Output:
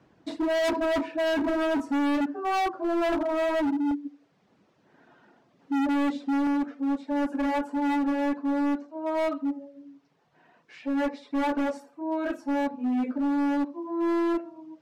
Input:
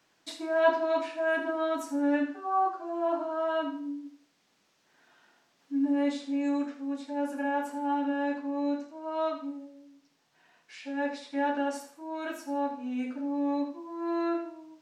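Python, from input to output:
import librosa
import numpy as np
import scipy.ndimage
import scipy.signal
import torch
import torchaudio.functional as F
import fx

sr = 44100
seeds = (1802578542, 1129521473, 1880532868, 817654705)

y = fx.highpass(x, sr, hz=fx.steps((0.0, 150.0), (3.91, 270.0), (6.47, 500.0)), slope=6)
y = fx.dereverb_blind(y, sr, rt60_s=0.54)
y = fx.tilt_eq(y, sr, slope=-5.5)
y = np.clip(10.0 ** (30.0 / 20.0) * y, -1.0, 1.0) / 10.0 ** (30.0 / 20.0)
y = y * librosa.db_to_amplitude(6.5)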